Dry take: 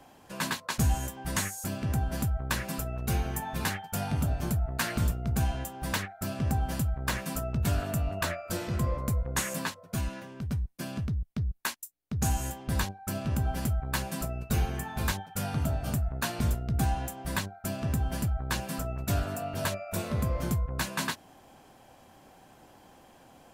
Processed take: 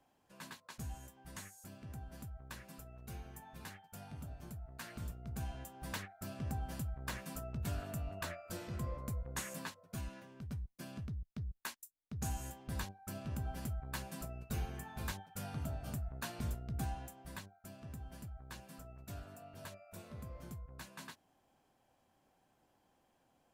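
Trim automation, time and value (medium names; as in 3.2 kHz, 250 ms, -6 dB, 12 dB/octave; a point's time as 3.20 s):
4.66 s -19 dB
5.82 s -11.5 dB
16.81 s -11.5 dB
17.62 s -19 dB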